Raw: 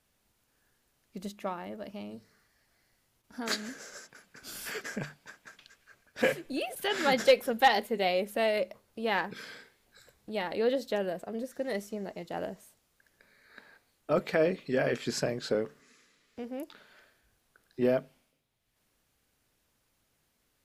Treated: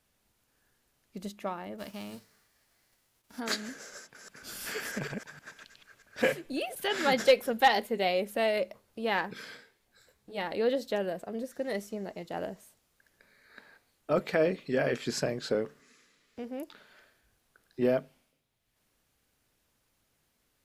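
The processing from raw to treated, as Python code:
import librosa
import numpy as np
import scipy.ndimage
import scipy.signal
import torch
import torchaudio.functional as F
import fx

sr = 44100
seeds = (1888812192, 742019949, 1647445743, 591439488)

y = fx.envelope_flatten(x, sr, power=0.6, at=(1.78, 3.39), fade=0.02)
y = fx.reverse_delay(y, sr, ms=158, wet_db=-2, at=(3.97, 6.26))
y = fx.detune_double(y, sr, cents=fx.line((9.56, 26.0), (10.37, 40.0)), at=(9.56, 10.37), fade=0.02)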